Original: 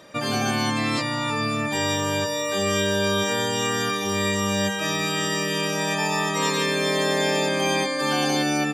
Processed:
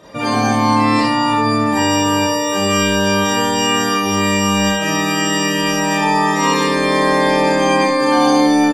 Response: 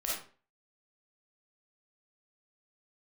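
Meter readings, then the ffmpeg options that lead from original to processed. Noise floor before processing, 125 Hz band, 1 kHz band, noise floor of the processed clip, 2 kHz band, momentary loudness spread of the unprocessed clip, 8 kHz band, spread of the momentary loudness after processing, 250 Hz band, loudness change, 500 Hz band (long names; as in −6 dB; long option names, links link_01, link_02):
−27 dBFS, +6.0 dB, +11.5 dB, −18 dBFS, +6.5 dB, 3 LU, +6.0 dB, 3 LU, +11.0 dB, +8.0 dB, +7.0 dB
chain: -filter_complex "[0:a]tiltshelf=frequency=1300:gain=4,acontrast=61,aecho=1:1:72:0.299[link_01];[1:a]atrim=start_sample=2205,asetrate=66150,aresample=44100[link_02];[link_01][link_02]afir=irnorm=-1:irlink=0"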